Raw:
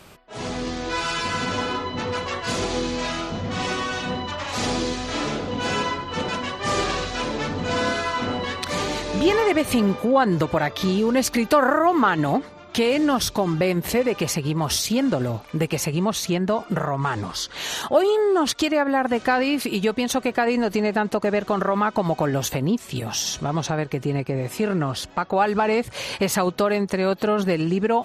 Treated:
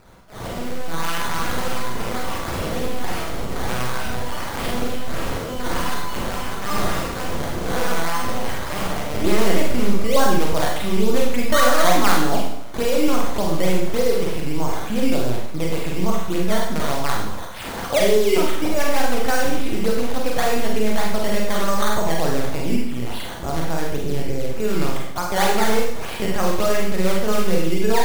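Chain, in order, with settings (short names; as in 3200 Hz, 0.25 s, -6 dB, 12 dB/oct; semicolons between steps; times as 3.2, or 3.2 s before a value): LPC vocoder at 8 kHz pitch kept; wow and flutter 28 cents; decimation with a swept rate 12×, swing 100% 3.4 Hz; Schroeder reverb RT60 0.7 s, combs from 33 ms, DRR -1.5 dB; gain -2.5 dB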